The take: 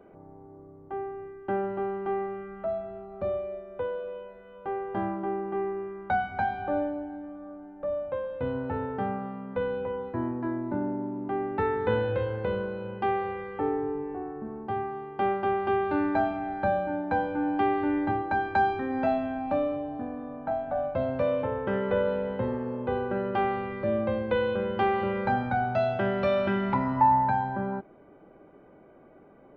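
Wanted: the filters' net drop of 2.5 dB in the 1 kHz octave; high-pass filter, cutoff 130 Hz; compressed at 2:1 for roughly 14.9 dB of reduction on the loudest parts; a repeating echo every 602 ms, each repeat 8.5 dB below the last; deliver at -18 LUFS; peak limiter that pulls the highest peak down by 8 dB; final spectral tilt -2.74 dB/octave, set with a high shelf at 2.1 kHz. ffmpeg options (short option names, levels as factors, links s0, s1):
-af "highpass=130,equalizer=f=1000:t=o:g=-4.5,highshelf=f=2100:g=6,acompressor=threshold=0.00398:ratio=2,alimiter=level_in=2.99:limit=0.0631:level=0:latency=1,volume=0.335,aecho=1:1:602|1204|1806|2408:0.376|0.143|0.0543|0.0206,volume=16.8"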